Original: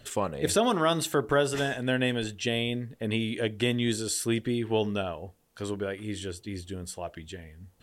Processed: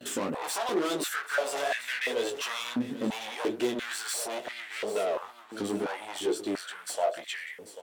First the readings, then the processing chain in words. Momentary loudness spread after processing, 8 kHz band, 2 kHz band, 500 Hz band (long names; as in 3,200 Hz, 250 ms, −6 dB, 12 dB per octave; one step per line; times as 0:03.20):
7 LU, −1.0 dB, +0.5 dB, −2.0 dB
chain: noise gate with hold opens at −47 dBFS
in parallel at −2 dB: downward compressor, threshold −35 dBFS, peak gain reduction 15 dB
on the sum: soft clipping −28.5 dBFS, distortion −7 dB
chorus effect 2.2 Hz, delay 16 ms, depth 5.5 ms
asymmetric clip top −39.5 dBFS
on a send: repeating echo 791 ms, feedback 39%, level −13.5 dB
on the sum: high-pass on a step sequencer 2.9 Hz 260–2,000 Hz
level +5 dB